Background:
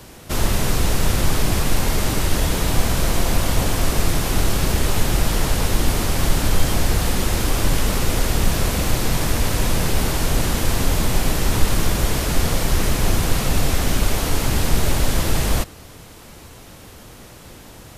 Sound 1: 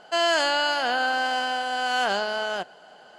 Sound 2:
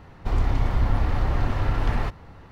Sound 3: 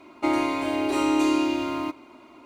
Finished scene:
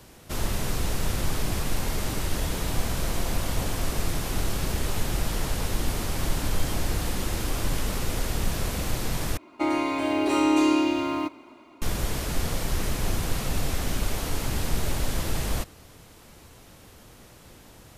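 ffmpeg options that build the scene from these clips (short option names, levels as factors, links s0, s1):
-filter_complex "[3:a]asplit=2[s0][s1];[0:a]volume=0.376[s2];[s0]acompressor=threshold=0.0501:ratio=6:attack=3.2:release=140:knee=1:detection=peak[s3];[s1]dynaudnorm=f=150:g=7:m=1.5[s4];[s2]asplit=2[s5][s6];[s5]atrim=end=9.374[s7];[s4]atrim=end=2.45,asetpts=PTS-STARTPTS,volume=0.75[s8];[s6]atrim=start=11.816[s9];[s3]atrim=end=2.45,asetpts=PTS-STARTPTS,volume=0.15,afade=t=in:d=0.004:c=hsin,afade=t=out:st=2.446:d=0.004:c=hsin,adelay=5900[s10];[s7][s8]acrossfade=d=0.004:c1=hsin:c2=hsin[s11];[s11][s9]acrossfade=d=0.004:c1=hsin:c2=hsin[s12];[s12][s10]amix=inputs=2:normalize=0"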